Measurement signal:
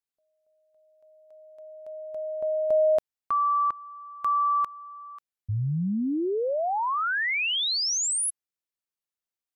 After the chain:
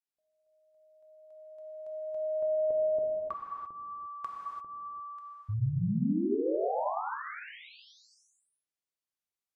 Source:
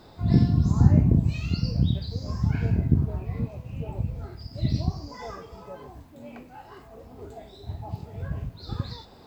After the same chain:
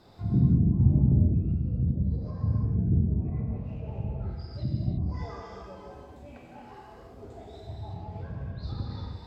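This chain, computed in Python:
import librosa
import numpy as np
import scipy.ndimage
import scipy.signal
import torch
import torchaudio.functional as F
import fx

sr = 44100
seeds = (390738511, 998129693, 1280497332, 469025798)

y = fx.env_lowpass_down(x, sr, base_hz=400.0, full_db=-22.5)
y = fx.rev_gated(y, sr, seeds[0], gate_ms=370, shape='flat', drr_db=-2.5)
y = y * 10.0 ** (-7.0 / 20.0)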